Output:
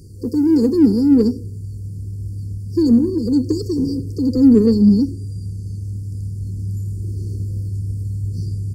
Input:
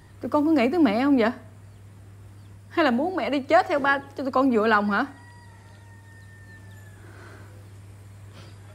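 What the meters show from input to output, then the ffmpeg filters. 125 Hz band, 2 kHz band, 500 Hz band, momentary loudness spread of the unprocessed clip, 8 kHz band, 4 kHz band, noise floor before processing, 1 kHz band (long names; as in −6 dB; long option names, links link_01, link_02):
+18.5 dB, below −25 dB, +2.0 dB, 7 LU, can't be measured, −1.5 dB, −48 dBFS, below −20 dB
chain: -filter_complex "[0:a]asplit=4[link_01][link_02][link_03][link_04];[link_02]adelay=93,afreqshift=66,volume=-23dB[link_05];[link_03]adelay=186,afreqshift=132,volume=-30.1dB[link_06];[link_04]adelay=279,afreqshift=198,volume=-37.3dB[link_07];[link_01][link_05][link_06][link_07]amix=inputs=4:normalize=0,afftfilt=real='re*(1-between(b*sr/4096,510,4300))':imag='im*(1-between(b*sr/4096,510,4300))':win_size=4096:overlap=0.75,asplit=2[link_08][link_09];[link_09]asoftclip=type=tanh:threshold=-28dB,volume=-10dB[link_10];[link_08][link_10]amix=inputs=2:normalize=0,asubboost=boost=5:cutoff=220,volume=6.5dB"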